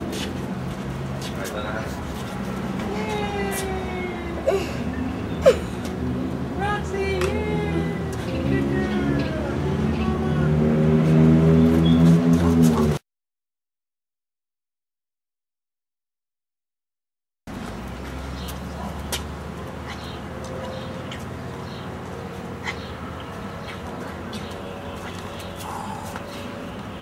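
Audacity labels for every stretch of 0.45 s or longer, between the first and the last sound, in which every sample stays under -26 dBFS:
12.970000	17.480000	silence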